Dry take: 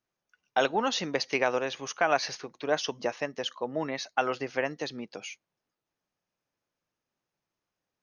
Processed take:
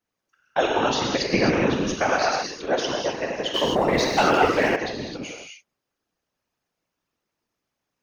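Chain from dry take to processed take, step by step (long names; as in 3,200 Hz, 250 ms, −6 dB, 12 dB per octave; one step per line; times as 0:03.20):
0:01.22–0:01.97: low shelf with overshoot 390 Hz +10.5 dB, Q 1.5
reverb whose tail is shaped and stops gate 290 ms flat, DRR −1.5 dB
0:03.54–0:04.76: leveller curve on the samples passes 2
random phases in short frames
level +1.5 dB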